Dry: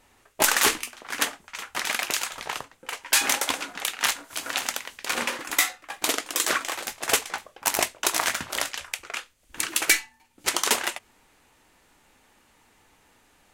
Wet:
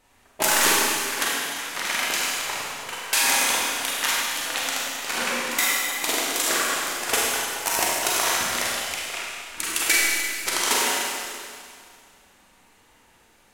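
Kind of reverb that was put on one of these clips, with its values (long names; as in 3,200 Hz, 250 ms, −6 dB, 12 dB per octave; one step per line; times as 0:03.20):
four-comb reverb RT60 2.2 s, combs from 33 ms, DRR −5 dB
level −3 dB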